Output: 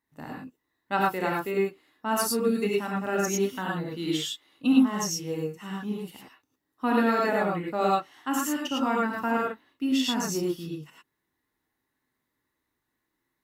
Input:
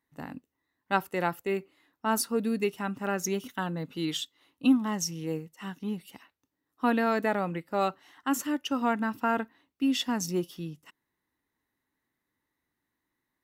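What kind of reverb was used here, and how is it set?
gated-style reverb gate 130 ms rising, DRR -3 dB; trim -2 dB

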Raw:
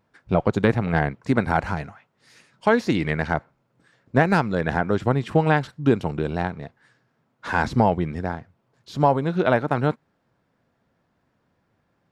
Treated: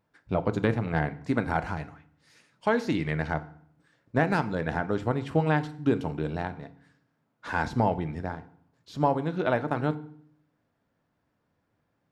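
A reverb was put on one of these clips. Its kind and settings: FDN reverb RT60 0.59 s, low-frequency decay 1.4×, high-frequency decay 0.85×, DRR 11 dB; trim -6.5 dB

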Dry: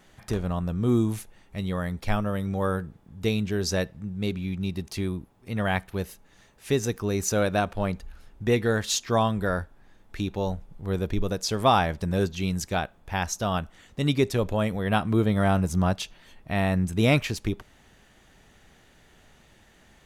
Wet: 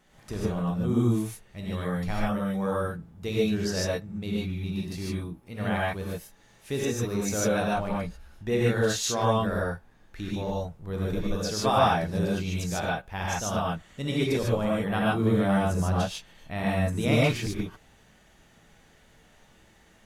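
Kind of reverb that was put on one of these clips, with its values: gated-style reverb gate 170 ms rising, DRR -5.5 dB; trim -7.5 dB

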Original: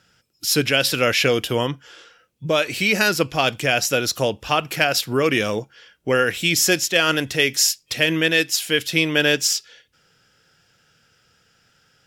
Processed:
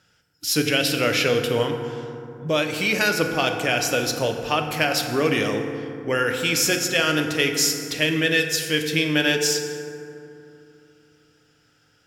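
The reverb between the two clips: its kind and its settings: FDN reverb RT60 2.8 s, low-frequency decay 1.35×, high-frequency decay 0.4×, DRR 4 dB; trim -3.5 dB

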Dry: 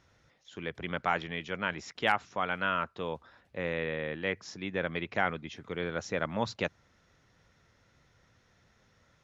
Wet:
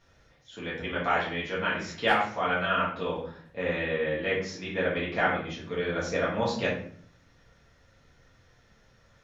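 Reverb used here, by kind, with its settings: simulated room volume 69 m³, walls mixed, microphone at 1.7 m; trim -3.5 dB

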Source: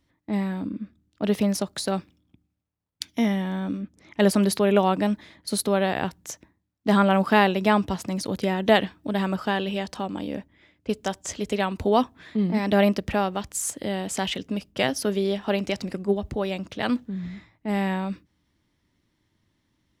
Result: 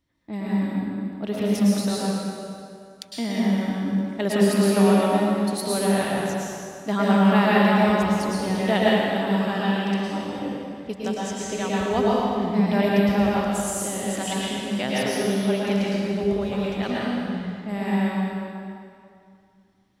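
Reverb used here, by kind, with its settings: plate-style reverb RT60 2.4 s, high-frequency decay 0.8×, pre-delay 95 ms, DRR -6.5 dB; trim -6 dB

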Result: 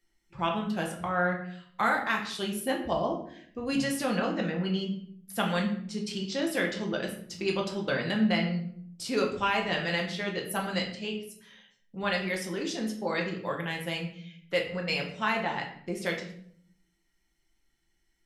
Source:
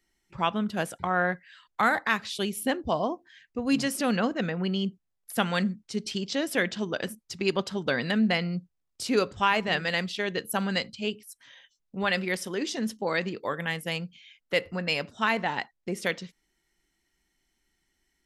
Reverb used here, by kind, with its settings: simulated room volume 99 m³, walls mixed, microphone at 0.8 m; trim -5 dB

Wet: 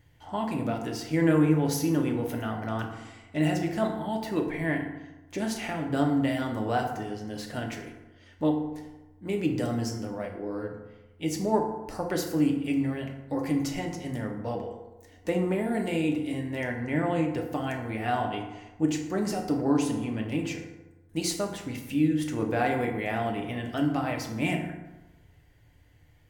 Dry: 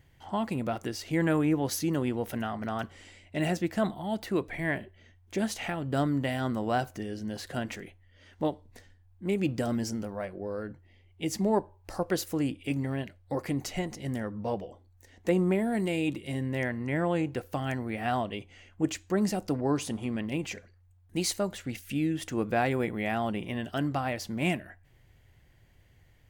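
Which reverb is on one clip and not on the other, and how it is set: FDN reverb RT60 1.1 s, low-frequency decay 1×, high-frequency decay 0.5×, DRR 1 dB; trim -1.5 dB

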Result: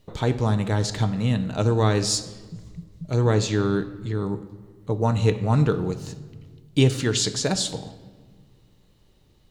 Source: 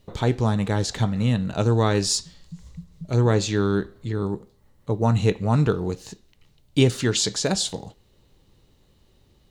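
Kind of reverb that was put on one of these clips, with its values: simulated room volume 1600 m³, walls mixed, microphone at 0.49 m; trim -1 dB

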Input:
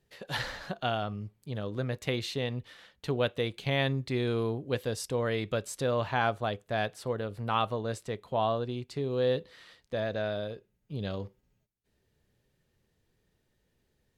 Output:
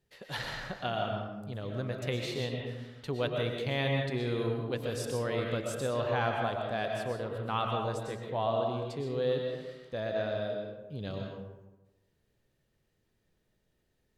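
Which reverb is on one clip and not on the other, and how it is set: algorithmic reverb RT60 1.1 s, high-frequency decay 0.5×, pre-delay 80 ms, DRR 1 dB; trim -4 dB

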